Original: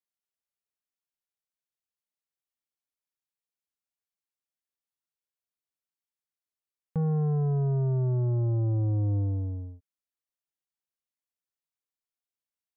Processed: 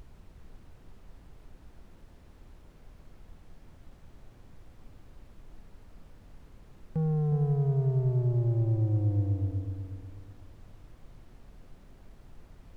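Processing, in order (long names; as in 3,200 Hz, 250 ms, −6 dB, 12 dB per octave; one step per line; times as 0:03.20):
parametric band 1,100 Hz −5 dB
background noise brown −48 dBFS
on a send: feedback echo with a low-pass in the loop 365 ms, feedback 31%, level −7 dB
on the sum: level −1.5 dB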